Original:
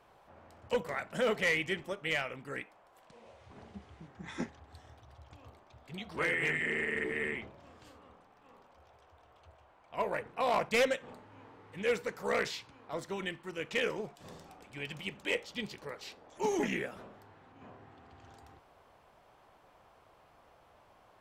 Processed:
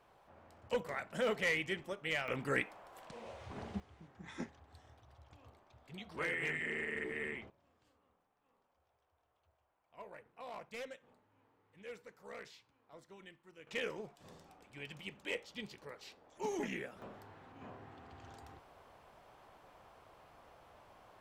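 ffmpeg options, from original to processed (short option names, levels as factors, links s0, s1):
-af "asetnsamples=n=441:p=0,asendcmd='2.28 volume volume 6.5dB;3.8 volume volume -6dB;7.5 volume volume -18dB;13.67 volume volume -7dB;17.02 volume volume 1.5dB',volume=0.631"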